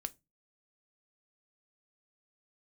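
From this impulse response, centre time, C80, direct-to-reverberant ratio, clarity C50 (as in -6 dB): 2 ms, 34.5 dB, 10.5 dB, 26.0 dB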